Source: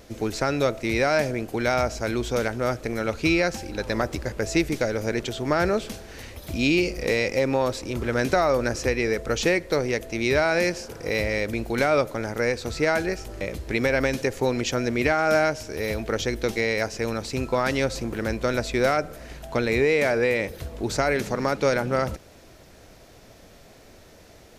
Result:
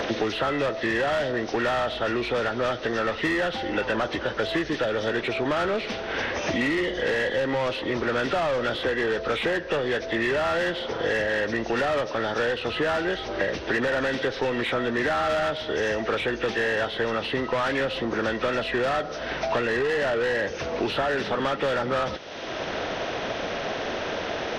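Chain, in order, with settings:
hearing-aid frequency compression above 1,200 Hz 1.5 to 1
mid-hump overdrive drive 22 dB, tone 2,900 Hz, clips at −9.5 dBFS
multiband upward and downward compressor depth 100%
level −7.5 dB

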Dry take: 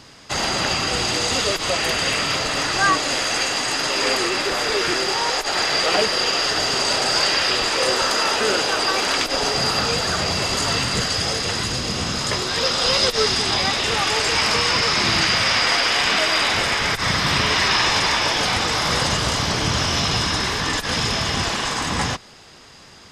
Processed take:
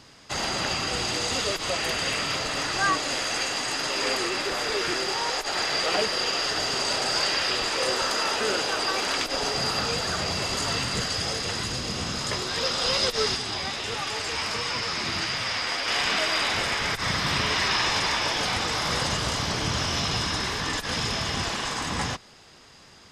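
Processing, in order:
0:13.36–0:15.88: flanger 1.5 Hz, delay 6.5 ms, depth 7 ms, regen +52%
level −6 dB

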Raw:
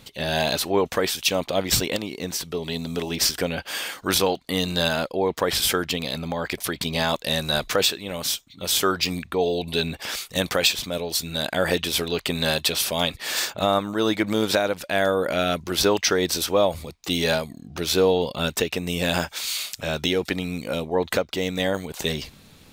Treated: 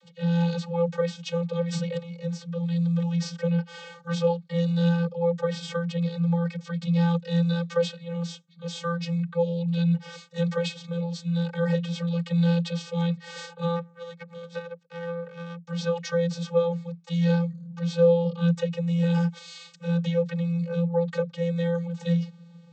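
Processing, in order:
0:13.75–0:15.67: power curve on the samples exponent 2
channel vocoder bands 32, square 170 Hz

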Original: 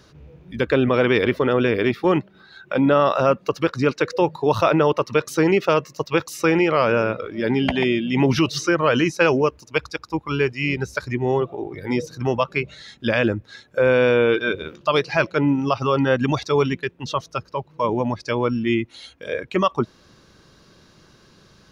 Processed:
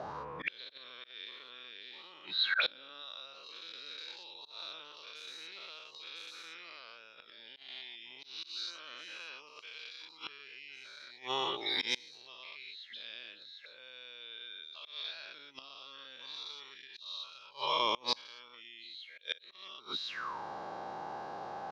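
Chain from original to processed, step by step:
every bin's largest magnitude spread in time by 240 ms
in parallel at +3 dB: downward compressor 4 to 1, threshold −29 dBFS, peak gain reduction 19 dB
on the sum: envelope filter 640–3,900 Hz, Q 11, up, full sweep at −16.5 dBFS
reversed playback
upward compression, threshold −55 dBFS
reversed playback
volume swells 165 ms
gate with flip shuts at −34 dBFS, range −27 dB
level +16.5 dB

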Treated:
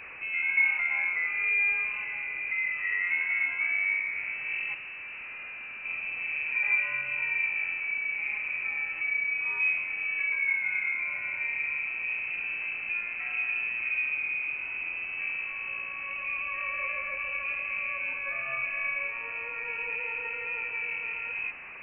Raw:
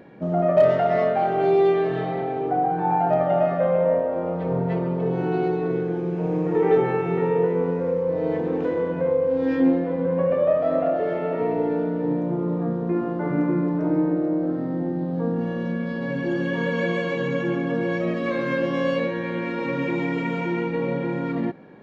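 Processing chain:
linear delta modulator 64 kbit/s, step −28.5 dBFS
low-shelf EQ 110 Hz −10.5 dB
0:04.74–0:05.85: gain into a clipping stage and back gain 32 dB
high-frequency loss of the air 280 metres
voice inversion scrambler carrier 2,800 Hz
level −7 dB

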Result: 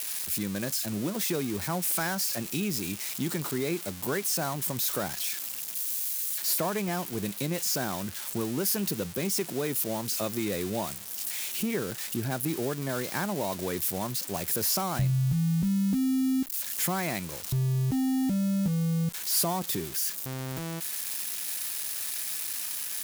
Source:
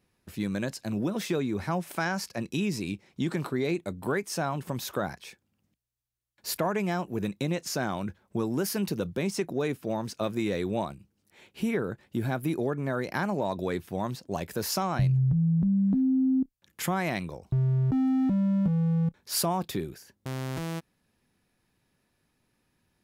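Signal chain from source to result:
spike at every zero crossing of −22 dBFS
level −2 dB

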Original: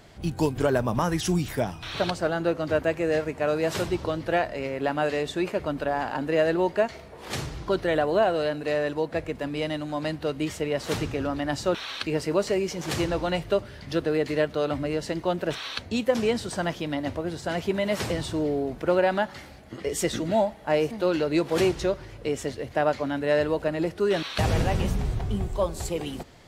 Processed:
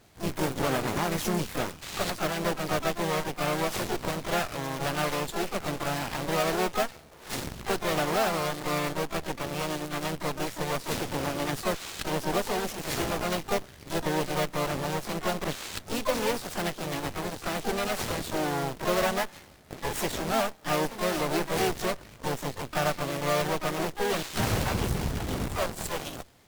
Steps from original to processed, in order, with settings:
log-companded quantiser 4 bits
harmonic generator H 7 −27 dB, 8 −10 dB, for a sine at −12 dBFS
pitch-shifted copies added +3 semitones −5 dB, +12 semitones −7 dB
level −7.5 dB

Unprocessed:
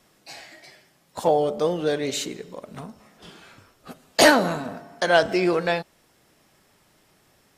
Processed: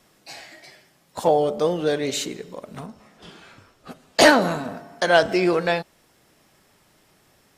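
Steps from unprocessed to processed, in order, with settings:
0:02.86–0:04.42: high-shelf EQ 11,000 Hz −10 dB
level +1.5 dB

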